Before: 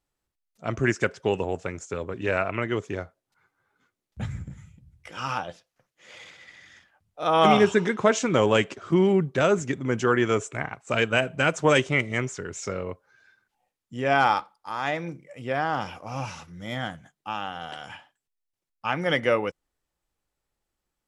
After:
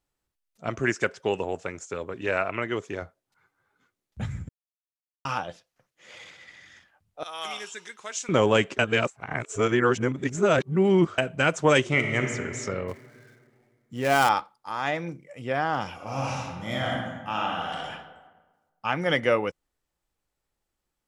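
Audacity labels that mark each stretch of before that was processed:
0.690000	3.020000	low shelf 210 Hz -8 dB
4.490000	5.250000	mute
7.230000	8.290000	differentiator
8.790000	11.180000	reverse
11.800000	12.300000	reverb throw, RT60 2.4 s, DRR 3.5 dB
12.880000	14.290000	switching dead time of 0.091 ms
15.940000	17.830000	reverb throw, RT60 1.3 s, DRR -2.5 dB

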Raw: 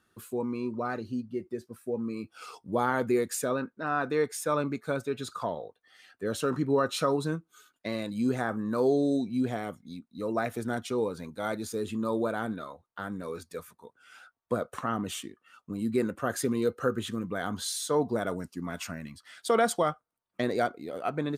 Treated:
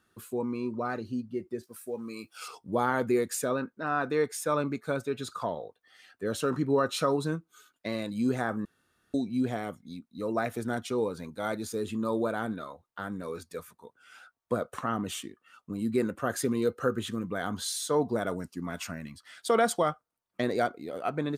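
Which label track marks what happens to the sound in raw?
1.630000	2.480000	tilt +3 dB/oct
8.650000	9.140000	room tone

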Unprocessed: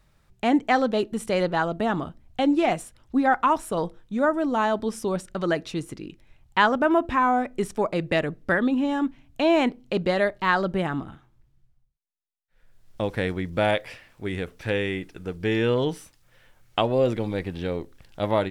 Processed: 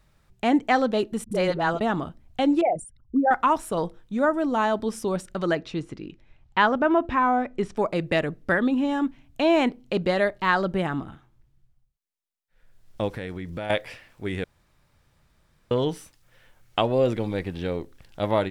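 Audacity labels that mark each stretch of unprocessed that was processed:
1.240000	1.810000	dispersion highs, late by 75 ms, half as late at 330 Hz
2.610000	3.310000	formant sharpening exponent 3
5.550000	7.770000	air absorption 100 m
13.080000	13.700000	compressor 4:1, threshold -30 dBFS
14.440000	15.710000	room tone

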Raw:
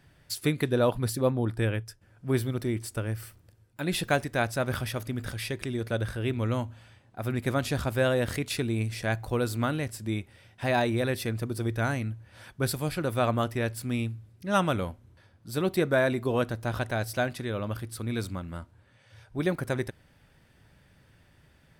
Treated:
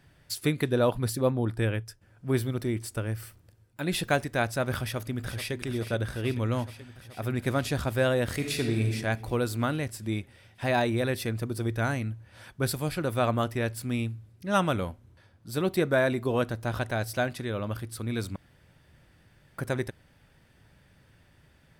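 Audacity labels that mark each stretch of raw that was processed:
4.800000	5.520000	echo throw 0.43 s, feedback 80%, level -11 dB
8.330000	8.930000	reverb throw, RT60 1.4 s, DRR 3 dB
18.360000	19.580000	room tone

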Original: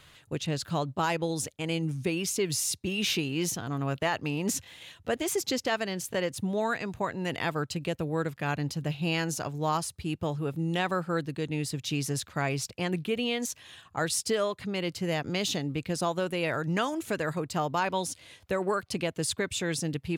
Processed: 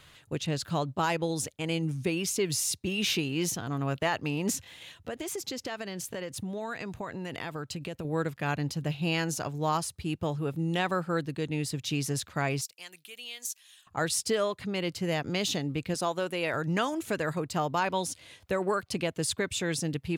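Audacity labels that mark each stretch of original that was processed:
4.550000	8.050000	compressor 5:1, threshold -32 dBFS
12.610000	13.870000	differentiator
15.940000	16.540000	low shelf 150 Hz -12 dB

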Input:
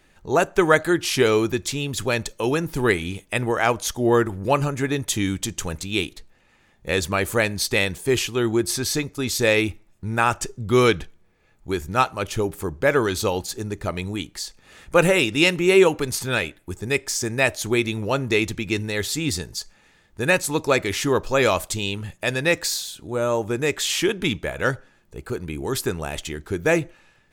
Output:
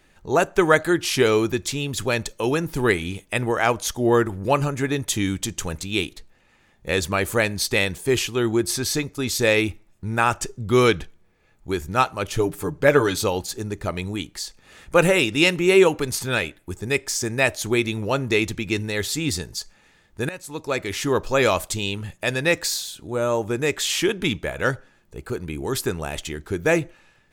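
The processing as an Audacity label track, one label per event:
12.330000	13.240000	comb 6.8 ms
20.290000	21.220000	fade in, from -20.5 dB

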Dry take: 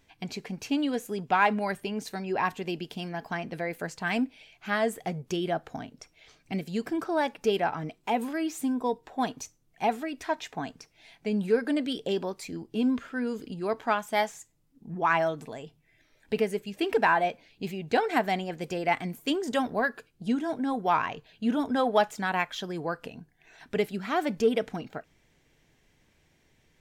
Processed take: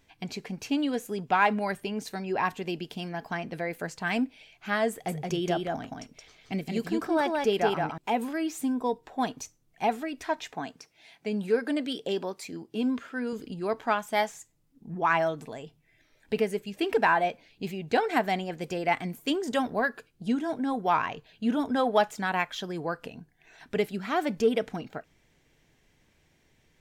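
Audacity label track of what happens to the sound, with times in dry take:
4.910000	7.980000	echo 0.172 s -3 dB
10.540000	13.330000	HPF 200 Hz 6 dB/oct

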